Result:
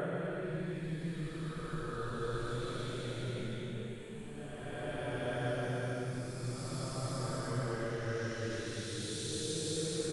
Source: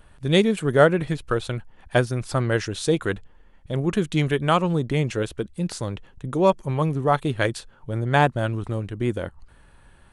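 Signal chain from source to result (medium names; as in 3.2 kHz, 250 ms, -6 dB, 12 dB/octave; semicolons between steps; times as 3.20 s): compression, threshold -29 dBFS, peak gain reduction 18 dB; delay 1190 ms -9 dB; Paulstretch 4.9×, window 0.50 s, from 0.87 s; trim -4.5 dB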